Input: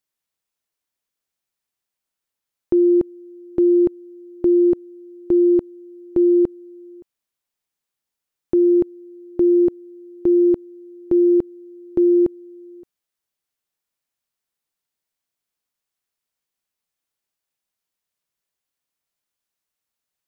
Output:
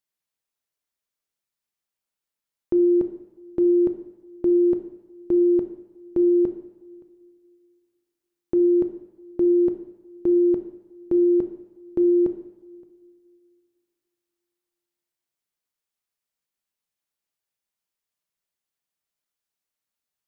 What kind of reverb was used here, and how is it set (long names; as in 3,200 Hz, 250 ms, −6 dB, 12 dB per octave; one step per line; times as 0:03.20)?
coupled-rooms reverb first 0.84 s, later 2.7 s, from −18 dB, DRR 7 dB
level −4.5 dB